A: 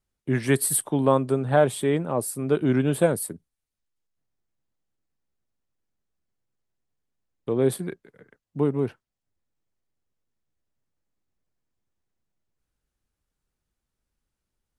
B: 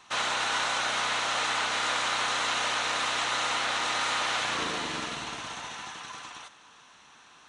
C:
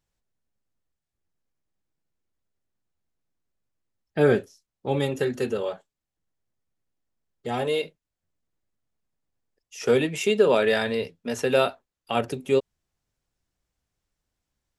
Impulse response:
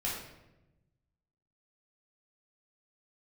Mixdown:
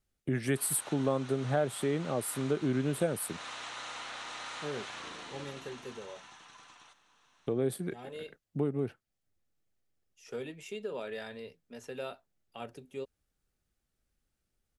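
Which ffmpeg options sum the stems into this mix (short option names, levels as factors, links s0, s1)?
-filter_complex "[0:a]bandreject=f=980:w=5,volume=1.06[s0];[1:a]adelay=450,volume=0.211[s1];[2:a]adelay=450,volume=0.126[s2];[s0][s1][s2]amix=inputs=3:normalize=0,acompressor=threshold=0.02:ratio=2"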